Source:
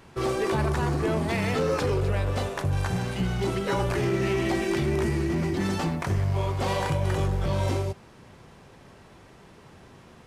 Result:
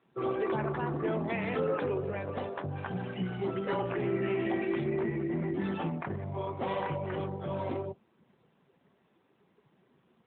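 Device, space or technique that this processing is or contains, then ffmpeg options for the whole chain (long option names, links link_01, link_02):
mobile call with aggressive noise cancelling: -af "highpass=160,afftdn=noise_reduction=13:noise_floor=-38,volume=-4dB" -ar 8000 -c:a libopencore_amrnb -b:a 12200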